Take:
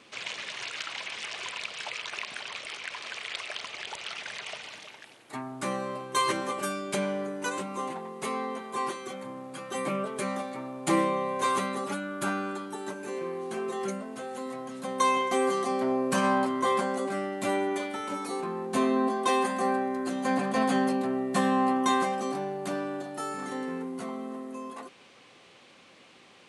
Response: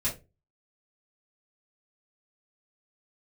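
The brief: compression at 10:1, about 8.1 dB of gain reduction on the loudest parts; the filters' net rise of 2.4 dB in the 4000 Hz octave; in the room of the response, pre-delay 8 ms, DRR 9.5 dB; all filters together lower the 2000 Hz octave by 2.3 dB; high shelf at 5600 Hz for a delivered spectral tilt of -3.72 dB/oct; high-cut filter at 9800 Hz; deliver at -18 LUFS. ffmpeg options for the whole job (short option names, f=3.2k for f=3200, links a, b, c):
-filter_complex "[0:a]lowpass=9.8k,equalizer=f=2k:t=o:g=-4,equalizer=f=4k:t=o:g=6,highshelf=f=5.6k:g=-4,acompressor=threshold=-29dB:ratio=10,asplit=2[a][b];[1:a]atrim=start_sample=2205,adelay=8[c];[b][c]afir=irnorm=-1:irlink=0,volume=-15.5dB[d];[a][d]amix=inputs=2:normalize=0,volume=17dB"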